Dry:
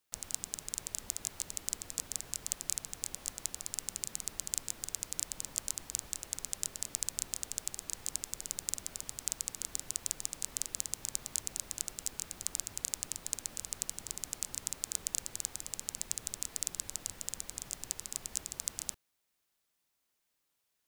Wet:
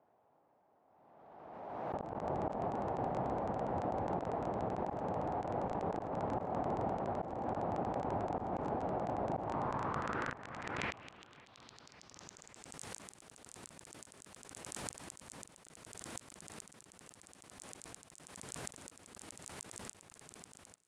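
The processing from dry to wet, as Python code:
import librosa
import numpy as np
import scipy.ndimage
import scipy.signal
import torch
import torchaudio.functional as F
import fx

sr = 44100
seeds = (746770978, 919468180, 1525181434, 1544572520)

p1 = np.flip(x).copy()
p2 = scipy.signal.sosfilt(scipy.signal.butter(2, 110.0, 'highpass', fs=sr, output='sos'), p1)
p3 = fx.high_shelf(p2, sr, hz=4100.0, db=-11.0)
p4 = fx.over_compress(p3, sr, threshold_db=-49.0, ratio=-1.0)
p5 = fx.filter_sweep_lowpass(p4, sr, from_hz=760.0, to_hz=9400.0, start_s=9.36, end_s=12.82, q=3.0)
p6 = fx.gate_flip(p5, sr, shuts_db=-40.0, range_db=-31)
p7 = p6 + fx.echo_feedback(p6, sr, ms=544, feedback_pct=58, wet_db=-22.5, dry=0)
p8 = fx.pre_swell(p7, sr, db_per_s=30.0)
y = F.gain(torch.from_numpy(p8), 14.5).numpy()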